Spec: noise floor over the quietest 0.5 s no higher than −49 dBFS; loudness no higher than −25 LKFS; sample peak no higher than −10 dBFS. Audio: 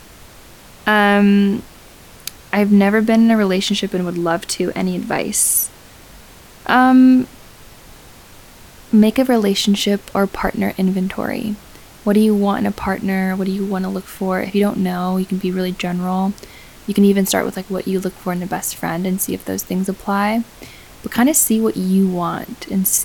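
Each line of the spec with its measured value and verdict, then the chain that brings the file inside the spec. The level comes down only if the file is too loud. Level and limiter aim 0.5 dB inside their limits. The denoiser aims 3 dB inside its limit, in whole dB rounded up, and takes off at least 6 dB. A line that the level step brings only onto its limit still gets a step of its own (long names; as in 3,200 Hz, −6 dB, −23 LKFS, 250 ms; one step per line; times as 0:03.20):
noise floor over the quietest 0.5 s −42 dBFS: out of spec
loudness −17.0 LKFS: out of spec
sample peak −2.5 dBFS: out of spec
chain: level −8.5 dB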